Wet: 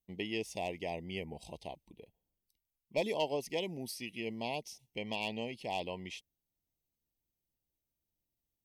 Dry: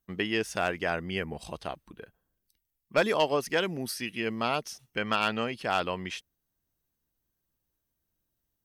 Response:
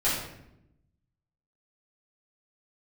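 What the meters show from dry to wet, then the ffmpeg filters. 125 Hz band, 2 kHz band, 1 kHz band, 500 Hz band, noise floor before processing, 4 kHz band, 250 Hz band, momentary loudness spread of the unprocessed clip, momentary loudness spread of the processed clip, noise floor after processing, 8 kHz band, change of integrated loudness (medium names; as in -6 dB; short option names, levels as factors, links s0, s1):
-7.5 dB, -11.5 dB, -10.5 dB, -7.5 dB, -82 dBFS, -7.5 dB, -7.5 dB, 12 LU, 13 LU, under -85 dBFS, -7.5 dB, -9.0 dB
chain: -af "asuperstop=centerf=1400:order=8:qfactor=1.3,volume=0.422"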